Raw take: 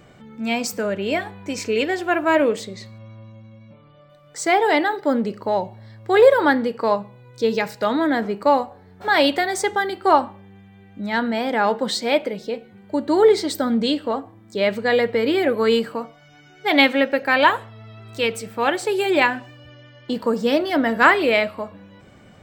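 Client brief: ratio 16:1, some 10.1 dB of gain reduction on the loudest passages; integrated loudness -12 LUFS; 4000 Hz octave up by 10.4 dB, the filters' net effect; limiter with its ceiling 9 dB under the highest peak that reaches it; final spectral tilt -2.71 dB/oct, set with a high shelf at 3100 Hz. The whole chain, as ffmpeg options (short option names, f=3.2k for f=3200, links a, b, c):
-af "highshelf=f=3.1k:g=8.5,equalizer=f=4k:t=o:g=7,acompressor=threshold=-16dB:ratio=16,volume=12.5dB,alimiter=limit=-1.5dB:level=0:latency=1"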